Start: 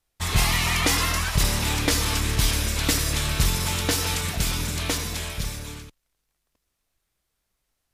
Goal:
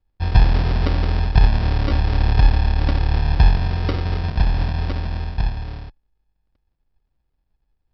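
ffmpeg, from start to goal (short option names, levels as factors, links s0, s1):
-af "aemphasis=mode=reproduction:type=bsi,aresample=11025,acrusher=samples=13:mix=1:aa=0.000001,aresample=44100,volume=0.708"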